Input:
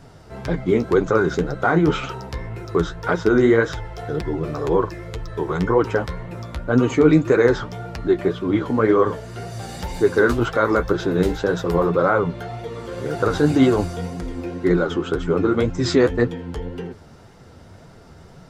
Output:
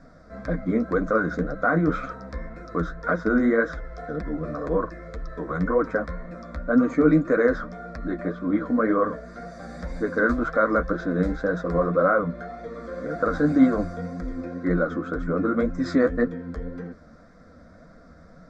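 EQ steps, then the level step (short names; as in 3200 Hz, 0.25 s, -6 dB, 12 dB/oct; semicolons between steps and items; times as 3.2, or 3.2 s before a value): dynamic EQ 5300 Hz, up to -4 dB, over -45 dBFS, Q 0.78; air absorption 140 m; fixed phaser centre 580 Hz, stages 8; 0.0 dB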